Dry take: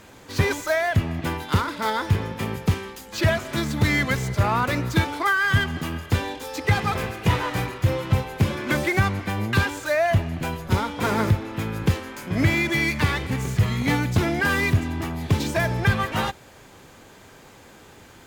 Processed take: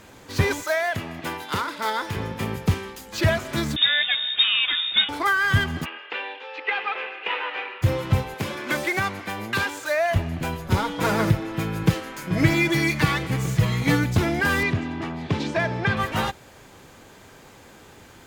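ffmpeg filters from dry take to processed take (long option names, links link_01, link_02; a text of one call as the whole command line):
ffmpeg -i in.wav -filter_complex "[0:a]asettb=1/sr,asplit=3[link_01][link_02][link_03];[link_01]atrim=end=0.634[link_04];[link_02]atrim=start=0.63:end=2.17,asetpts=PTS-STARTPTS,afade=type=in:duration=0.004:curve=qsin,afade=type=out:start_time=1.536:duration=0.004:curve=qsin,highpass=frequency=430:poles=1[link_05];[link_03]atrim=start=2.166[link_06];[link_04][link_05]acrossfade=duration=0.004:curve1=hsin:curve2=qsin[link_07];[link_07][link_06]acrossfade=duration=0.004:curve1=qsin:curve2=hsin,asettb=1/sr,asplit=3[link_08][link_09][link_10];[link_08]atrim=end=3.764[link_11];[link_09]atrim=start=3.76:end=5.09,asetpts=PTS-STARTPTS,afade=type=in:duration=0.004:curve=qsin,afade=type=out:start_time=1.326:duration=0.004:curve=qsin,lowpass=frequency=3200:width_type=q:width=0.5098,lowpass=frequency=3200:width_type=q:width=0.6013,lowpass=frequency=3200:width_type=q:width=0.9,lowpass=frequency=3200:width_type=q:width=2.563,afreqshift=-3800[link_12];[link_10]atrim=start=5.086[link_13];[link_11][link_12]acrossfade=duration=0.004:curve1=hsin:curve2=qsin[link_14];[link_14][link_13]acrossfade=duration=0.004:curve1=qsin:curve2=hsin,asplit=3[link_15][link_16][link_17];[link_15]afade=type=out:start_time=5.84:duration=0.02[link_18];[link_16]highpass=frequency=490:width=0.5412,highpass=frequency=490:width=1.3066,equalizer=frequency=660:width_type=q:width=4:gain=-9,equalizer=frequency=1100:width_type=q:width=4:gain=-4,equalizer=frequency=2700:width_type=q:width=4:gain=8,lowpass=frequency=3100:width=0.5412,lowpass=frequency=3100:width=1.3066,afade=type=in:start_time=5.84:duration=0.02,afade=type=out:start_time=7.81:duration=0.02[link_19];[link_17]afade=type=in:start_time=7.81:duration=0.02[link_20];[link_18][link_19][link_20]amix=inputs=3:normalize=0,asettb=1/sr,asplit=3[link_21][link_22][link_23];[link_21]atrim=end=8.344[link_24];[link_22]atrim=start=8.34:end=10.16,asetpts=PTS-STARTPTS,afade=type=in:duration=0.004:curve=qsin,afade=type=out:start_time=1.816:duration=0.004:curve=qsin,highpass=frequency=420:poles=1[link_25];[link_23]atrim=start=10.156[link_26];[link_24][link_25]acrossfade=duration=0.004:curve1=hsin:curve2=qsin[link_27];[link_27][link_26]acrossfade=duration=0.004:curve1=qsin:curve2=hsin,asettb=1/sr,asplit=3[link_28][link_29][link_30];[link_28]atrim=end=10.764[link_31];[link_29]atrim=start=10.76:end=14.04,asetpts=PTS-STARTPTS,afade=type=in:duration=0.004:curve=qsin,afade=type=out:start_time=3.276:duration=0.004:curve=qsin,aecho=1:1:6.2:0.65,atrim=end_sample=144648[link_32];[link_30]atrim=start=14.036[link_33];[link_31][link_32]acrossfade=duration=0.004:curve1=hsin:curve2=qsin[link_34];[link_34][link_33]acrossfade=duration=0.004:curve1=qsin:curve2=hsin,asettb=1/sr,asplit=3[link_35][link_36][link_37];[link_35]atrim=end=14.634[link_38];[link_36]atrim=start=14.63:end=15.97,asetpts=PTS-STARTPTS,afade=type=in:duration=0.004:curve=qsin,afade=type=out:start_time=1.336:duration=0.004:curve=qsin,highpass=140,lowpass=4400[link_39];[link_37]atrim=start=15.966[link_40];[link_38][link_39]acrossfade=duration=0.004:curve1=hsin:curve2=qsin[link_41];[link_41][link_40]acrossfade=duration=0.004:curve1=qsin:curve2=hsin" out.wav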